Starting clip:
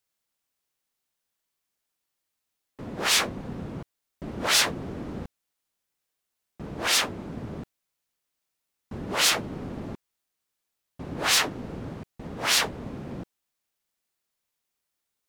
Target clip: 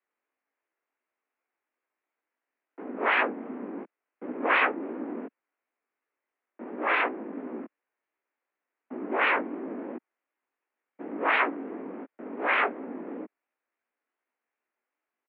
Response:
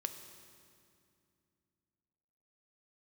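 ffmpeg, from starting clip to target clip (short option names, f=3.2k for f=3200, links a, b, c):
-af "highpass=f=220:t=q:w=0.5412,highpass=f=220:t=q:w=1.307,lowpass=f=3.3k:t=q:w=0.5176,lowpass=f=3.3k:t=q:w=0.7071,lowpass=f=3.3k:t=q:w=1.932,afreqshift=140,asetrate=30296,aresample=44100,atempo=1.45565,flanger=delay=15.5:depth=6.1:speed=2.8,volume=5.5dB"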